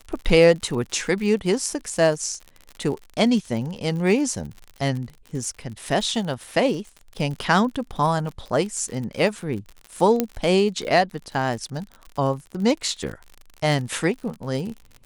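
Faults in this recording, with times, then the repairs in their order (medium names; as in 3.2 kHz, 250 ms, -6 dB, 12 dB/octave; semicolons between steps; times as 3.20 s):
crackle 57 per s -31 dBFS
10.20 s: pop -6 dBFS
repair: de-click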